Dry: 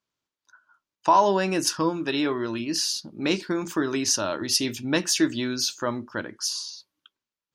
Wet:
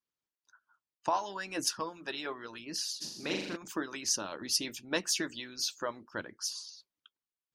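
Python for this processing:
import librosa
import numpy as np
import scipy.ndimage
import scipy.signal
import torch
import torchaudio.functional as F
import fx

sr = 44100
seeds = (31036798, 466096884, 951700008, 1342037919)

y = fx.room_flutter(x, sr, wall_m=7.0, rt60_s=1.1, at=(3.0, 3.55), fade=0.02)
y = fx.hpss(y, sr, part='harmonic', gain_db=-17)
y = F.gain(torch.from_numpy(y), -6.0).numpy()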